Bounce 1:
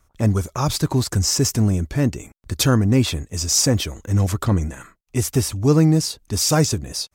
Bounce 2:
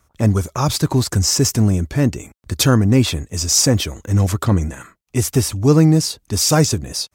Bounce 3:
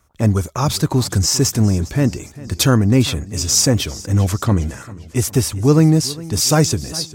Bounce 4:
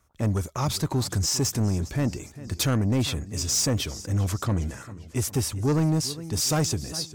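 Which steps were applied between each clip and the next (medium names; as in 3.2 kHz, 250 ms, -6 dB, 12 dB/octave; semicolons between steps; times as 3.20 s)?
high-pass 51 Hz; trim +3 dB
modulated delay 403 ms, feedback 48%, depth 81 cents, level -19 dB
saturation -11.5 dBFS, distortion -13 dB; trim -6.5 dB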